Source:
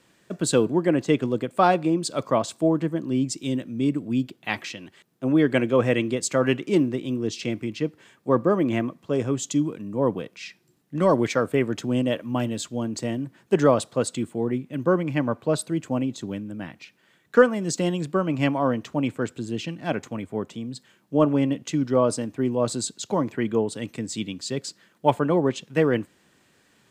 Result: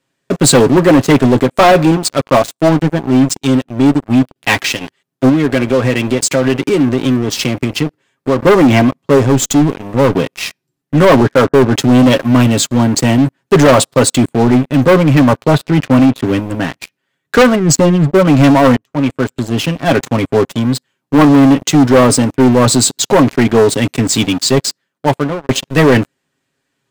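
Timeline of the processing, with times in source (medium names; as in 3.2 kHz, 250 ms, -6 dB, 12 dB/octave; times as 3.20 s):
1.91–4.36 s: power-law waveshaper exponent 1.4
5.29–8.43 s: compression 3:1, threshold -30 dBFS
9.18–10.15 s: valve stage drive 23 dB, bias 0.65
11.20–11.74 s: Chebyshev low-pass 1.7 kHz, order 6
15.51–16.24 s: resonant low-pass 2.5 kHz, resonance Q 1.6
17.55–18.25 s: spectral contrast enhancement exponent 1.6
18.76–20.06 s: fade in, from -17.5 dB
24.48–25.49 s: fade out
whole clip: comb 7.4 ms, depth 56%; waveshaping leveller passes 5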